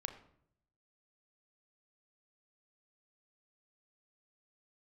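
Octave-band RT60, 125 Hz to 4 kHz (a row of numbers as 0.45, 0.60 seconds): 1.1, 0.85, 0.75, 0.60, 0.55, 0.45 seconds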